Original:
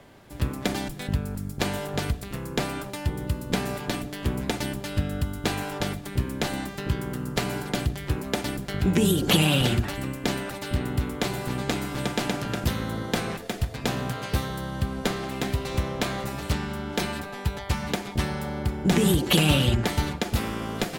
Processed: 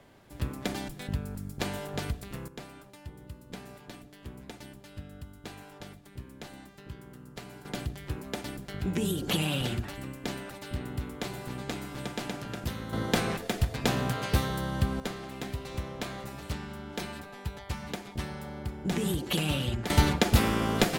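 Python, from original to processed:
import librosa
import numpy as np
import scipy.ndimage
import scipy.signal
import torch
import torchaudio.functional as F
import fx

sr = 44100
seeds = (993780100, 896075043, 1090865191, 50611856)

y = fx.gain(x, sr, db=fx.steps((0.0, -6.0), (2.48, -17.0), (7.65, -8.5), (12.93, 0.0), (15.0, -9.0), (19.9, 3.5)))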